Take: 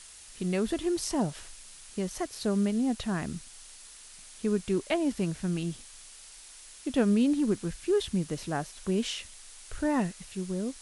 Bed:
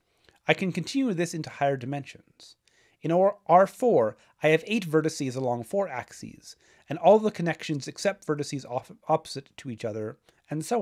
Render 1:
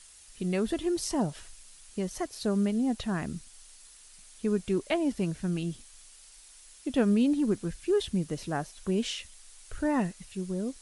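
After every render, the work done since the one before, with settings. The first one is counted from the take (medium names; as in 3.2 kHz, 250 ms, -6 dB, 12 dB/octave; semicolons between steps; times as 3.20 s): noise reduction 6 dB, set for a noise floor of -50 dBFS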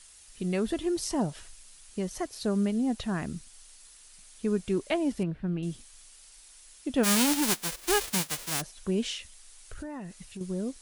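5.23–5.63 s: distance through air 440 m; 7.03–8.60 s: formants flattened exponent 0.1; 9.17–10.41 s: compression, threshold -36 dBFS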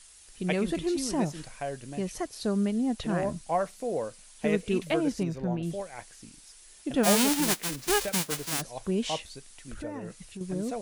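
add bed -9.5 dB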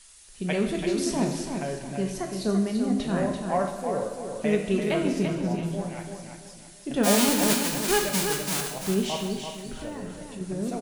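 feedback delay 338 ms, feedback 32%, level -6.5 dB; two-slope reverb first 0.85 s, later 3.1 s, from -18 dB, DRR 3 dB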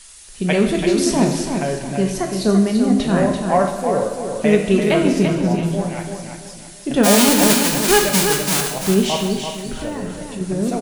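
trim +9.5 dB; peak limiter -2 dBFS, peak gain reduction 2.5 dB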